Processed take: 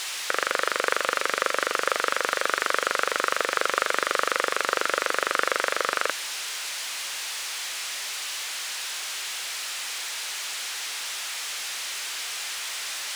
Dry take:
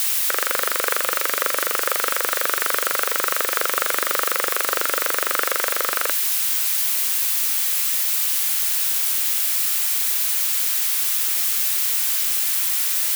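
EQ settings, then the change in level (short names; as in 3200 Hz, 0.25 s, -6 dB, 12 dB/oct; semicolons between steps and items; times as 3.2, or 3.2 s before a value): air absorption 83 m; 0.0 dB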